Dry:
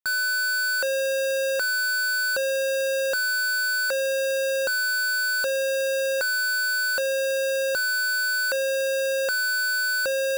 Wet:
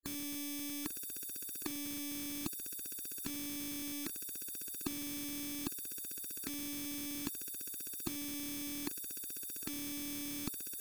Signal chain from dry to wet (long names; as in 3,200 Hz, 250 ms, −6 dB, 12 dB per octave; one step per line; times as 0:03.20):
gate on every frequency bin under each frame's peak −25 dB weak
low shelf with overshoot 430 Hz +11 dB, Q 3
wrong playback speed 25 fps video run at 24 fps
level −3 dB